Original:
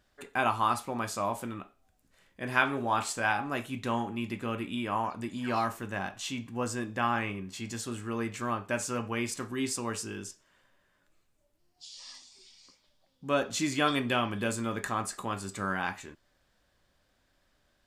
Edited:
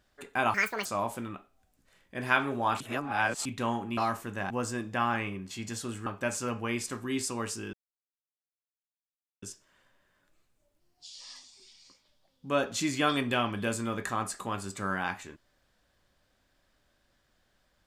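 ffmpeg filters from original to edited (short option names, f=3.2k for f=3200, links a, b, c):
-filter_complex "[0:a]asplit=9[a][b][c][d][e][f][g][h][i];[a]atrim=end=0.544[j];[b]atrim=start=0.54:end=1.11,asetpts=PTS-STARTPTS,asetrate=80262,aresample=44100[k];[c]atrim=start=1.106:end=3.062[l];[d]atrim=start=3.058:end=3.712,asetpts=PTS-STARTPTS,areverse[m];[e]atrim=start=3.708:end=4.232[n];[f]atrim=start=5.528:end=6.062[o];[g]atrim=start=6.528:end=8.092[p];[h]atrim=start=8.538:end=10.21,asetpts=PTS-STARTPTS,afade=t=out:st=1.668:d=0.004:c=hsin,apad=pad_dur=1.69[q];[i]atrim=start=10.21,asetpts=PTS-STARTPTS,afade=t=in:d=0.004:c=hsin[r];[j][k]acrossfade=d=0.004:c1=hsin:c2=hsin[s];[s][l]acrossfade=d=0.004:c1=hsin:c2=hsin[t];[t][m]acrossfade=d=0.004:c1=hsin:c2=hsin[u];[u][n]acrossfade=d=0.004:c1=hsin:c2=hsin[v];[v][o]acrossfade=d=0.004:c1=hsin:c2=hsin[w];[w][p]acrossfade=d=0.004:c1=hsin:c2=hsin[x];[q][r]concat=n=2:v=0:a=1[y];[x][y]acrossfade=d=0.004:c1=hsin:c2=hsin"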